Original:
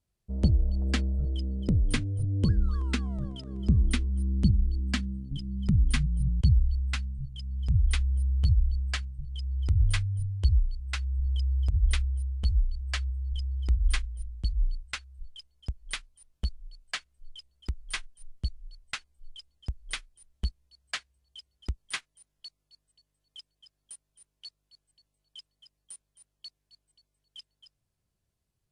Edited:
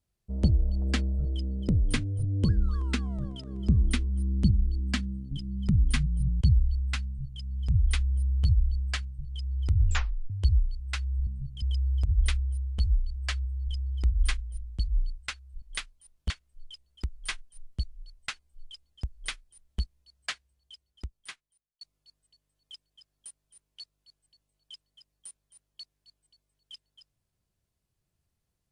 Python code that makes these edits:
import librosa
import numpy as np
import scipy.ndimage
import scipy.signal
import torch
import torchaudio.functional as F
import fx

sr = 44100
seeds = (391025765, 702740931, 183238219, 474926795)

y = fx.edit(x, sr, fx.duplicate(start_s=7.06, length_s=0.35, to_s=11.27),
    fx.tape_stop(start_s=9.84, length_s=0.46),
    fx.cut(start_s=15.27, length_s=0.51),
    fx.cut(start_s=16.46, length_s=0.49),
    fx.fade_out_span(start_s=20.96, length_s=1.5), tone=tone)